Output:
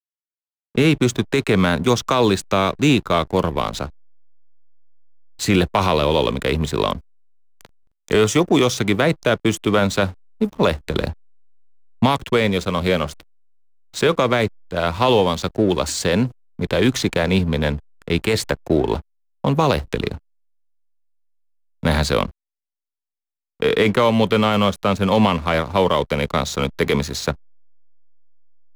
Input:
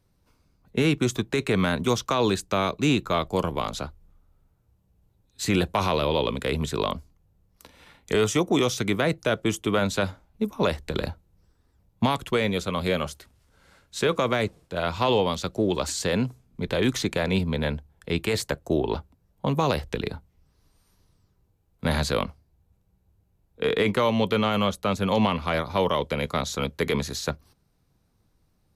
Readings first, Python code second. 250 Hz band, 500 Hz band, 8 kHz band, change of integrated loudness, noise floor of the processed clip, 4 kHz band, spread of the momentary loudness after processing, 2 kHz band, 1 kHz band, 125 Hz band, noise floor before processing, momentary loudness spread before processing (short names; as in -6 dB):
+6.5 dB, +6.5 dB, +5.0 dB, +6.5 dB, under -85 dBFS, +5.5 dB, 9 LU, +6.0 dB, +6.5 dB, +6.5 dB, -68 dBFS, 9 LU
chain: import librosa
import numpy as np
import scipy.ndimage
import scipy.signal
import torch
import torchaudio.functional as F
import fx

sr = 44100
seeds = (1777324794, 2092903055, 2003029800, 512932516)

y = fx.backlash(x, sr, play_db=-35.0)
y = F.gain(torch.from_numpy(y), 6.5).numpy()